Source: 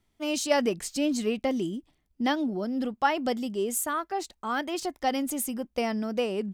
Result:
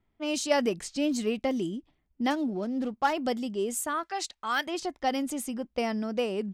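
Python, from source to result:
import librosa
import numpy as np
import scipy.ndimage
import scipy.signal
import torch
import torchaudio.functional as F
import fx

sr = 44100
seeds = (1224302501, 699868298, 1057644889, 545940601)

y = fx.median_filter(x, sr, points=15, at=(2.3, 3.13))
y = fx.tilt_shelf(y, sr, db=-9.0, hz=890.0, at=(4.03, 4.67))
y = fx.env_lowpass(y, sr, base_hz=2200.0, full_db=-23.5)
y = y * librosa.db_to_amplitude(-1.0)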